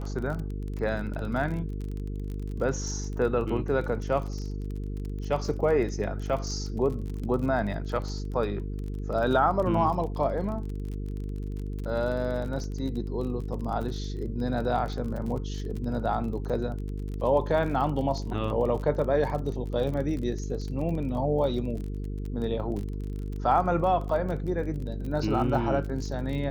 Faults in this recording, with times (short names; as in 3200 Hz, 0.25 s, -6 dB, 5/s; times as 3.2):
buzz 50 Hz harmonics 9 -33 dBFS
crackle 34/s -34 dBFS